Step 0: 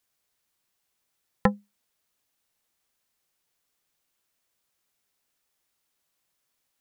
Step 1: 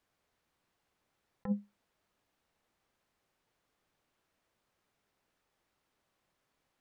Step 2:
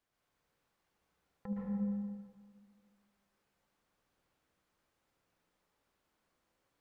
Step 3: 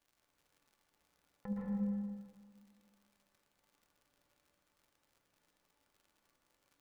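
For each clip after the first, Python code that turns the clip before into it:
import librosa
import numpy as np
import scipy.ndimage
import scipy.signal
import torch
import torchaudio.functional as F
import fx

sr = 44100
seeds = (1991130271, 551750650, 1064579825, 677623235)

y1 = fx.lowpass(x, sr, hz=1200.0, slope=6)
y1 = fx.over_compress(y1, sr, threshold_db=-33.0, ratio=-1.0)
y1 = y1 * 10.0 ** (-1.0 / 20.0)
y2 = fx.echo_wet_lowpass(y1, sr, ms=74, feedback_pct=68, hz=700.0, wet_db=-5)
y2 = fx.rev_plate(y2, sr, seeds[0], rt60_s=1.7, hf_ratio=0.75, predelay_ms=105, drr_db=-4.0)
y2 = y2 * 10.0 ** (-6.0 / 20.0)
y3 = fx.comb_fb(y2, sr, f0_hz=290.0, decay_s=0.17, harmonics='all', damping=0.0, mix_pct=70)
y3 = fx.dmg_crackle(y3, sr, seeds[1], per_s=93.0, level_db=-66.0)
y3 = y3 * 10.0 ** (8.5 / 20.0)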